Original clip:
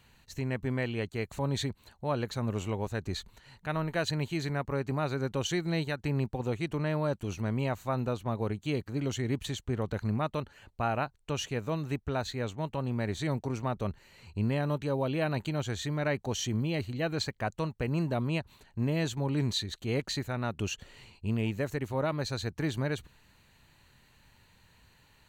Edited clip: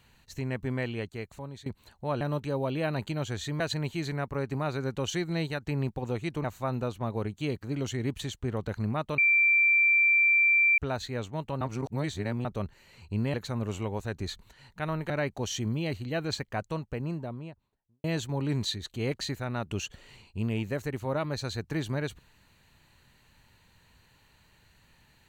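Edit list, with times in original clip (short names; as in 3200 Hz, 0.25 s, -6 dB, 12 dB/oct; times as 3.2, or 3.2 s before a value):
0.88–1.66 fade out linear, to -20.5 dB
2.21–3.97 swap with 14.59–15.98
6.81–7.69 cut
10.43–12.03 bleep 2350 Hz -19 dBFS
12.86–13.7 reverse
17.35–18.92 studio fade out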